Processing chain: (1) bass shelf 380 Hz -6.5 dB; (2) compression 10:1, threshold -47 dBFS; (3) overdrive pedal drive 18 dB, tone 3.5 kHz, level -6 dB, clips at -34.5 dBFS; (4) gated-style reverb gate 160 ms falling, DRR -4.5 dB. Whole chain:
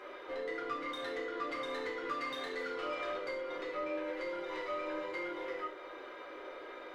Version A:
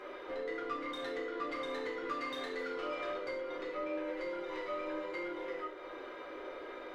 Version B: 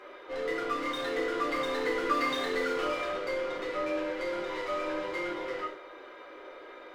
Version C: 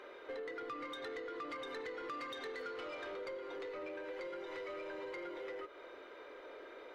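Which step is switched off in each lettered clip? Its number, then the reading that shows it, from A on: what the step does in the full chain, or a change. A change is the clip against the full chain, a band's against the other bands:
1, 250 Hz band +3.0 dB; 2, crest factor change +3.0 dB; 4, crest factor change -3.5 dB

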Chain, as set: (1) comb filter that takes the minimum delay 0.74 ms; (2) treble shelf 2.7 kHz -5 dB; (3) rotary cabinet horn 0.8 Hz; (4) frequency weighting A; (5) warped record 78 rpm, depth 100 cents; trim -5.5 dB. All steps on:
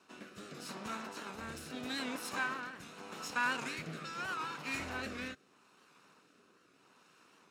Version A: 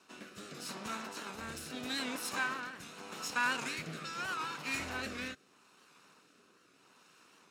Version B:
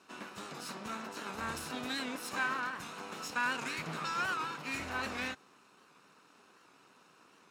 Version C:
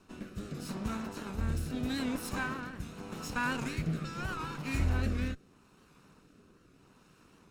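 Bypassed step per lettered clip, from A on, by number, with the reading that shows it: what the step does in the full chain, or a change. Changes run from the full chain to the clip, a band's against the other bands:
2, 8 kHz band +4.0 dB; 3, crest factor change -2.0 dB; 4, 125 Hz band +16.5 dB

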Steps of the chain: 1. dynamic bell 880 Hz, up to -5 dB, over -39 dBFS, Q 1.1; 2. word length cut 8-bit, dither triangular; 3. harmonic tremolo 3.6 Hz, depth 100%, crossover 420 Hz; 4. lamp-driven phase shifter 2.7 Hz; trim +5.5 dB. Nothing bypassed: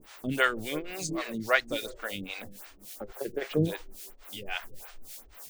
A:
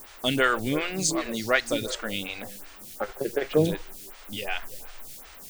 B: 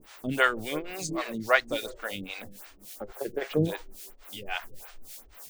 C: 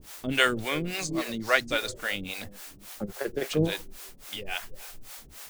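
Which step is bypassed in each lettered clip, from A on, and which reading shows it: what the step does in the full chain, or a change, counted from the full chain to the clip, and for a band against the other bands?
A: 3, crest factor change -2.5 dB; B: 1, 1 kHz band +2.5 dB; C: 4, 4 kHz band +4.0 dB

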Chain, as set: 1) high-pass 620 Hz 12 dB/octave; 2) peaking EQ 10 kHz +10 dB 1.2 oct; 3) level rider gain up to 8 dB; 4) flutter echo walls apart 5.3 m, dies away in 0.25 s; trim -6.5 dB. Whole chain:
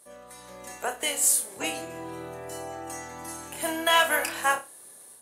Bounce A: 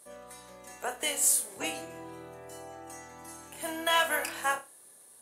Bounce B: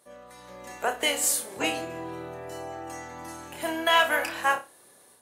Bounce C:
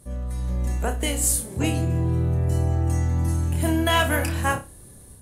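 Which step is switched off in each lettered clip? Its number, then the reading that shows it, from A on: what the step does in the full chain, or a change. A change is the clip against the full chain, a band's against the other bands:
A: 3, 8 kHz band +2.0 dB; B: 2, 8 kHz band -4.5 dB; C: 1, 125 Hz band +29.5 dB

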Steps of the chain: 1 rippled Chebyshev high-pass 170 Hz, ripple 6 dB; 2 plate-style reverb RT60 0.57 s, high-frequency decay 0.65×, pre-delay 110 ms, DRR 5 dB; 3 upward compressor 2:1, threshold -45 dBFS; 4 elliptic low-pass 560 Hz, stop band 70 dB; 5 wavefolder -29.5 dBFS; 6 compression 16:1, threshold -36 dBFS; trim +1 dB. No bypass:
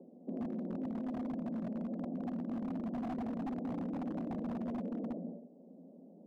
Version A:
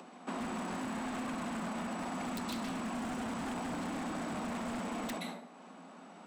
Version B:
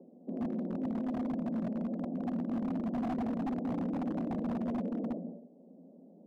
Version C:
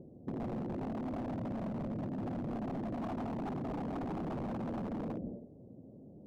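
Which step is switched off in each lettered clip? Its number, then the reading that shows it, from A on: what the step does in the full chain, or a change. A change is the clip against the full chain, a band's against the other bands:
4, 2 kHz band +16.0 dB; 6, mean gain reduction 3.0 dB; 1, momentary loudness spread change -1 LU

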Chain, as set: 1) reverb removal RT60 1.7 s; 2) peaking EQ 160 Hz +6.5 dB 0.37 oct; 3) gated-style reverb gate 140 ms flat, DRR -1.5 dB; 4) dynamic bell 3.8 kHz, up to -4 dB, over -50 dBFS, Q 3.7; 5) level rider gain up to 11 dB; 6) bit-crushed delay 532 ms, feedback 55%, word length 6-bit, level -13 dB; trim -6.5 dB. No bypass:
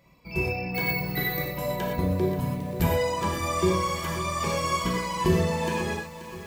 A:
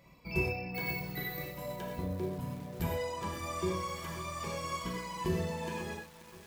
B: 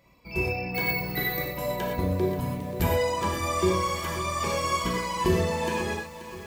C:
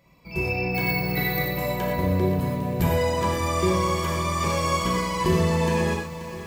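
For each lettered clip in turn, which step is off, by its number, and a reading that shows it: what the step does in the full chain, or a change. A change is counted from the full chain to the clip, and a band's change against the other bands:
5, crest factor change +2.0 dB; 2, 125 Hz band -2.0 dB; 1, loudness change +3.0 LU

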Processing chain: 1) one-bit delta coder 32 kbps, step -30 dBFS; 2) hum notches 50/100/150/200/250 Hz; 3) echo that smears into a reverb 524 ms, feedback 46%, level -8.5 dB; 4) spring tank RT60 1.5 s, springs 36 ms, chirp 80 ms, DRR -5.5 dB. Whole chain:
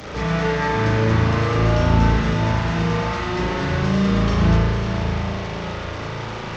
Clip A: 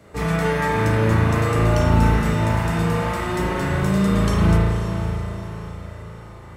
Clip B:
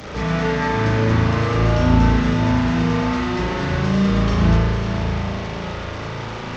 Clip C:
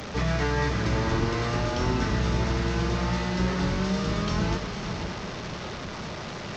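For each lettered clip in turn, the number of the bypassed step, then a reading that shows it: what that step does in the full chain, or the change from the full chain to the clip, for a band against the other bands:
1, 4 kHz band -4.0 dB; 2, 250 Hz band +2.5 dB; 4, echo-to-direct 6.5 dB to -7.5 dB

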